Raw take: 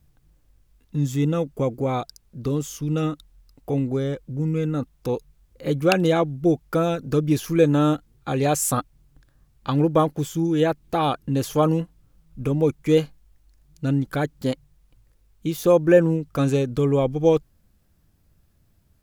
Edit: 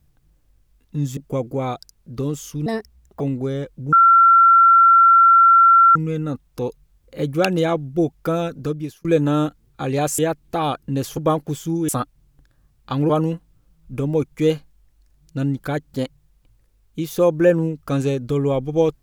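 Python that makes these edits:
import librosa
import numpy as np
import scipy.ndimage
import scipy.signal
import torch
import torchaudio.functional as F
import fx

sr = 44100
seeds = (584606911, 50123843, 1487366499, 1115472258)

y = fx.edit(x, sr, fx.cut(start_s=1.17, length_s=0.27),
    fx.speed_span(start_s=2.93, length_s=0.78, speed=1.43),
    fx.insert_tone(at_s=4.43, length_s=2.03, hz=1360.0, db=-8.0),
    fx.fade_out_span(start_s=7.0, length_s=0.52),
    fx.swap(start_s=8.66, length_s=1.21, other_s=10.58, other_length_s=0.99), tone=tone)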